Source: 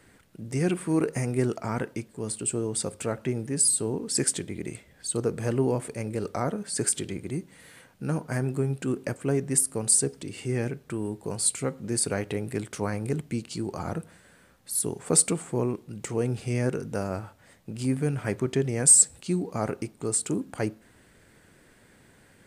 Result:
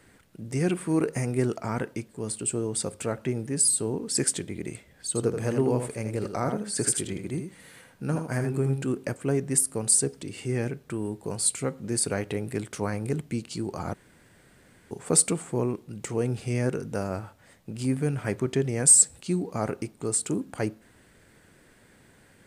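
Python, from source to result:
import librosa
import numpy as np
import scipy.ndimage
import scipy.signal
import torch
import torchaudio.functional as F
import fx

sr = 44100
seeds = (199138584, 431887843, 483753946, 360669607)

y = fx.echo_single(x, sr, ms=81, db=-7.0, at=(5.07, 8.9))
y = fx.edit(y, sr, fx.room_tone_fill(start_s=13.94, length_s=0.97), tone=tone)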